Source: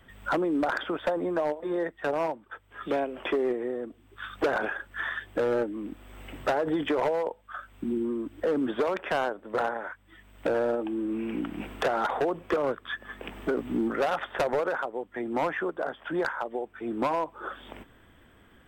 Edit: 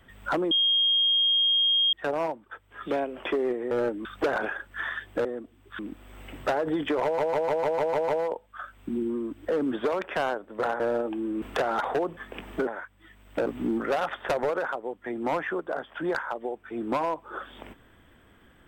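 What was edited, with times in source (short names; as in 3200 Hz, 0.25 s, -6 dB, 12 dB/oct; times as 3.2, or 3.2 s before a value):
0.51–1.93 bleep 3240 Hz -19.5 dBFS
3.71–4.25 swap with 5.45–5.79
7.03 stutter 0.15 s, 8 plays
9.75–10.54 move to 13.56
11.16–11.68 cut
12.43–13.06 cut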